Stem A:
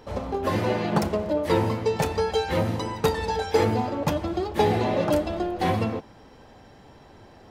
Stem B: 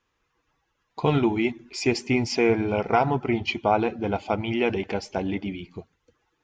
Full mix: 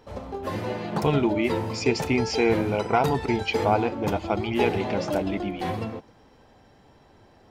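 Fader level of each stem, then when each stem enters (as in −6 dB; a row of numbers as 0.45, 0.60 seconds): −5.5, −1.0 decibels; 0.00, 0.00 seconds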